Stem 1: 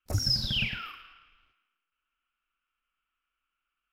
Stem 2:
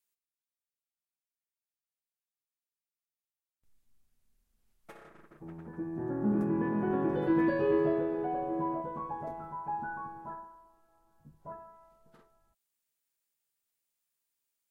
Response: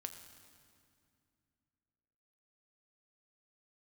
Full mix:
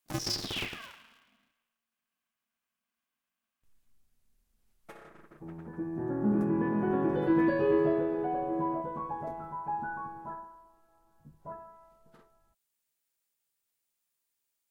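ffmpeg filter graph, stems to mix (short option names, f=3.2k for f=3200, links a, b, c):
-filter_complex "[0:a]aeval=exprs='val(0)*sgn(sin(2*PI*230*n/s))':c=same,volume=-6.5dB[a];[1:a]volume=1.5dB[b];[a][b]amix=inputs=2:normalize=0"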